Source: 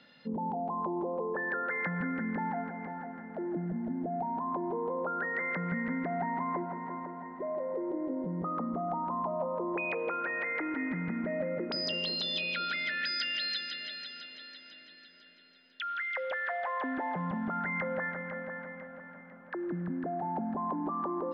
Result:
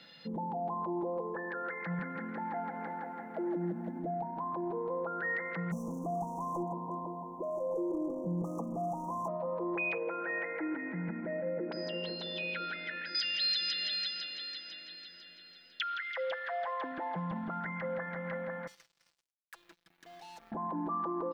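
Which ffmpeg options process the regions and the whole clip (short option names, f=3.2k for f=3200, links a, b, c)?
-filter_complex "[0:a]asettb=1/sr,asplit=3[a][b][c];[a]atrim=end=1.994[d];[b]atrim=start=1.99:end=3.99,asetpts=PTS-STARTPTS,afade=t=in:d=0.004:c=qsin,afade=t=out:st=1.996:d=0.004:c=qsin,highpass=f=270:p=1,aecho=1:1:163:0.501,atrim=end_sample=88200[e];[c]atrim=start=3.986[f];[d][e]acrossfade=d=0.004:c1=hsin:c2=qsin[g];[g][f]acrossfade=d=0.004:c1=qsin:c2=hsin,asettb=1/sr,asplit=3[h][i][j];[h]atrim=end=5.714[k];[i]atrim=start=5.71:end=9.28,asetpts=PTS-STARTPTS,afade=t=in:d=0.004:c=qsin,afade=t=out:st=3.566:d=0.004:c=qsin,volume=30dB,asoftclip=hard,volume=-30dB,asuperstop=centerf=2600:order=20:qfactor=0.55[l];[j]atrim=start=9.276[m];[k][l]acrossfade=d=0.004:c1=hsin:c2=qsin[n];[n][m]acrossfade=d=0.004:c1=qsin:c2=hsin,asettb=1/sr,asplit=3[o][p][q];[o]atrim=end=9.984[r];[p]atrim=start=9.98:end=13.15,asetpts=PTS-STARTPTS,afade=t=in:d=0.004:c=qsin,afade=t=out:st=3.166:d=0.004:c=qsin,acrossover=split=160 2000:gain=0.178 1 0.0708[s][t][u];[s][t][u]amix=inputs=3:normalize=0,bandreject=f=1.2k:w=5.4[v];[q]atrim=start=13.146[w];[r][v]acrossfade=d=0.004:c1=hsin:c2=qsin[x];[x][w]acrossfade=d=0.004:c1=qsin:c2=hsin,asettb=1/sr,asplit=3[y][z][aa];[y]atrim=end=18.674[ab];[z]atrim=start=18.67:end=20.52,asetpts=PTS-STARTPTS,afade=t=in:d=0.004:c=qsin,afade=t=out:st=1.846:d=0.004:c=qsin,aderivative,acrusher=bits=8:mix=0:aa=0.5[ac];[aa]atrim=start=20.516[ad];[ab][ac]acrossfade=d=0.004:c1=hsin:c2=qsin[ae];[ae][ad]acrossfade=d=0.004:c1=qsin:c2=hsin,alimiter=level_in=7dB:limit=-24dB:level=0:latency=1:release=58,volume=-7dB,highshelf=f=3.4k:g=9.5,aecho=1:1:6:0.57"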